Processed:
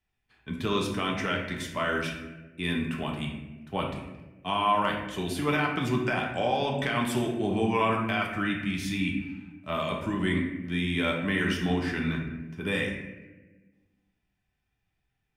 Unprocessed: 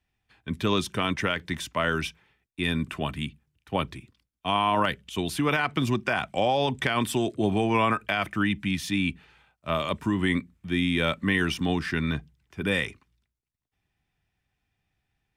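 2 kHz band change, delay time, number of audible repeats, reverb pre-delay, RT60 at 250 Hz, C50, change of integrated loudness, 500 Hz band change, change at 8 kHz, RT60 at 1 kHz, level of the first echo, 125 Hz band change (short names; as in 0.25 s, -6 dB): -2.0 dB, none, none, 3 ms, 1.8 s, 4.0 dB, -2.0 dB, -1.5 dB, -3.5 dB, 0.95 s, none, -1.5 dB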